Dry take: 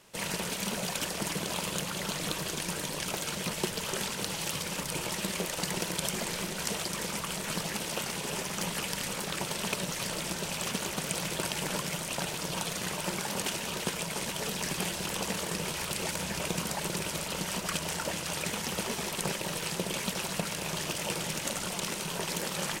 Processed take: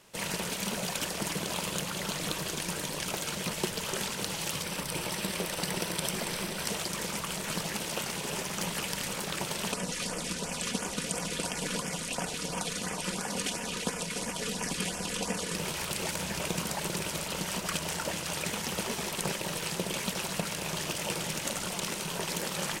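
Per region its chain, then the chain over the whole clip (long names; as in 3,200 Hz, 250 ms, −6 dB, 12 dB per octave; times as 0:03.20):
0:04.64–0:06.68: notch filter 6,800 Hz, Q 6.9 + single-tap delay 279 ms −12 dB
0:09.72–0:15.55: low-pass filter 11,000 Hz 24 dB per octave + comb filter 4.1 ms, depth 50% + auto-filter notch sine 2.9 Hz 710–4,100 Hz
whole clip: no processing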